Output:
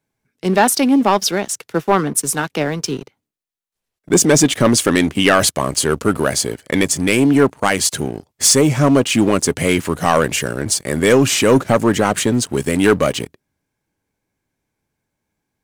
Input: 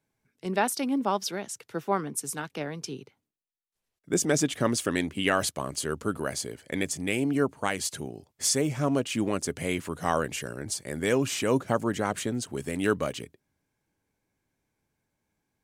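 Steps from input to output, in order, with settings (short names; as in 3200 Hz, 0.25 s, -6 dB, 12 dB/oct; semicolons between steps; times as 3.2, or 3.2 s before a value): sample leveller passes 2; gain +7 dB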